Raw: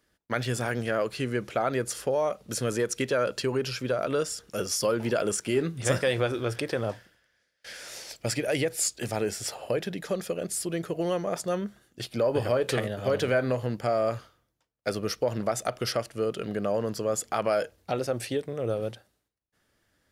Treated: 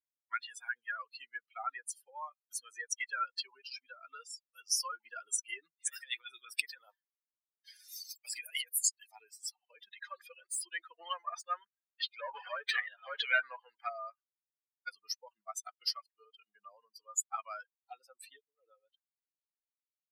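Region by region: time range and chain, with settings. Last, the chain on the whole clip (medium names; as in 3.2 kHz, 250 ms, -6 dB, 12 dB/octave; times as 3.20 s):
5.88–8.84 s: high-pass 190 Hz + treble shelf 5.5 kHz +9 dB + compressor with a negative ratio -29 dBFS
9.92–13.89 s: high-pass 260 Hz + overdrive pedal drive 16 dB, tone 2.7 kHz, clips at -14 dBFS
whole clip: expander on every frequency bin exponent 3; high-pass 1.1 kHz 24 dB/octave; trim +4 dB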